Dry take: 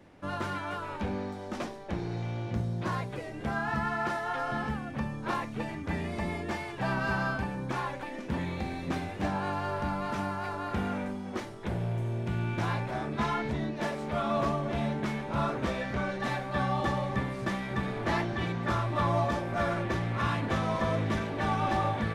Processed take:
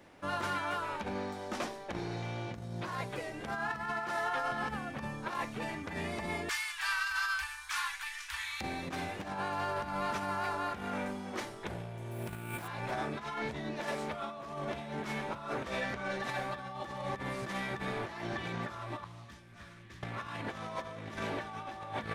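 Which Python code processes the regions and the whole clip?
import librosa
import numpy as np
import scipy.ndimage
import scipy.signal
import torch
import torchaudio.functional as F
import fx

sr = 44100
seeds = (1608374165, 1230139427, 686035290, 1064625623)

y = fx.chain(x, sr, fx.cheby2_bandstop(low_hz=140.0, high_hz=470.0, order=4, stop_db=60),
    fx.high_shelf(hz=3400.0, db=9.5), at=(6.49, 8.61))
y = fx.chain(y, sr, fx.resample_bad(factor=4, down='none', up='hold'),
    fx.doppler_dist(depth_ms=0.11), at=(12.11, 12.68))
y = fx.chain(y, sr, fx.tone_stack(knobs='6-0-2'),
    fx.notch(hz=1400.0, q=22.0),
    fx.doppler_dist(depth_ms=0.26), at=(19.04, 20.03))
y = fx.high_shelf(y, sr, hz=8000.0, db=4.0)
y = fx.over_compress(y, sr, threshold_db=-33.0, ratio=-0.5)
y = fx.low_shelf(y, sr, hz=360.0, db=-9.0)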